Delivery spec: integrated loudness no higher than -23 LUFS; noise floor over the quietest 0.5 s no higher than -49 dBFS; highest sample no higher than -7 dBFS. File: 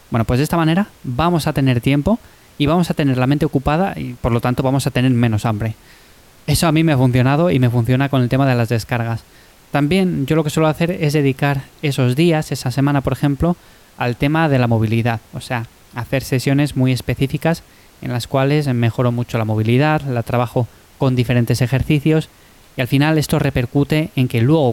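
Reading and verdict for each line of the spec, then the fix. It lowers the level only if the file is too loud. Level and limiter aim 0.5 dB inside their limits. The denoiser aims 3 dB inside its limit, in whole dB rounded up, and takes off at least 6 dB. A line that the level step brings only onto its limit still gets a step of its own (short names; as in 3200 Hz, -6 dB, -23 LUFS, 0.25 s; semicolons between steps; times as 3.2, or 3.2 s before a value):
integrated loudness -17.0 LUFS: fail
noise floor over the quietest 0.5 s -46 dBFS: fail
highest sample -5.0 dBFS: fail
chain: gain -6.5 dB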